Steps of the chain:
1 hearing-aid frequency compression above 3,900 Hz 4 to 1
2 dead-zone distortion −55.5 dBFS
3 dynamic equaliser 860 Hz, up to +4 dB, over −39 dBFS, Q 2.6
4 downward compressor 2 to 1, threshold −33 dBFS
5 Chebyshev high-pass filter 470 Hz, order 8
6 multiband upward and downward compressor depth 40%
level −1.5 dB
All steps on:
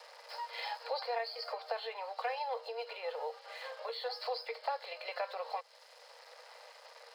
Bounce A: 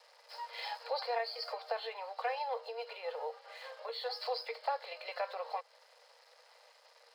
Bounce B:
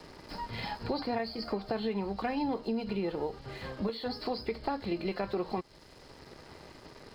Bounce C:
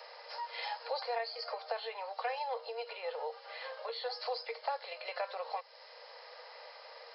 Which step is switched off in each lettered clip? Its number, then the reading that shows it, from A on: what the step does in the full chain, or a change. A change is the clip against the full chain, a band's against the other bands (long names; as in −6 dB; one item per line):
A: 6, change in momentary loudness spread −7 LU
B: 5, 500 Hz band +4.0 dB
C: 2, distortion level −30 dB